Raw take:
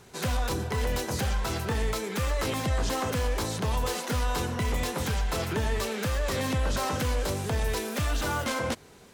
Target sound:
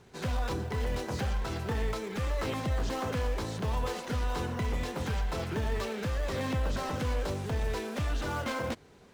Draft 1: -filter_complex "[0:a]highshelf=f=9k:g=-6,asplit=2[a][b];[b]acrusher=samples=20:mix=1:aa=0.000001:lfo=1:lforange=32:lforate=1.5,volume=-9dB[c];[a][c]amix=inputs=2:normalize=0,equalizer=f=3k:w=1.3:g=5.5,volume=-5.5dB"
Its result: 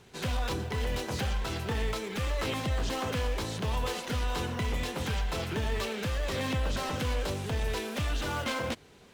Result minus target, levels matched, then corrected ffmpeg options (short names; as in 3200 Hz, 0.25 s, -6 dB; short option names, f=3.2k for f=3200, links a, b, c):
4000 Hz band +4.5 dB; 8000 Hz band +3.0 dB
-filter_complex "[0:a]highshelf=f=9k:g=-16,asplit=2[a][b];[b]acrusher=samples=20:mix=1:aa=0.000001:lfo=1:lforange=32:lforate=1.5,volume=-9dB[c];[a][c]amix=inputs=2:normalize=0,volume=-5.5dB"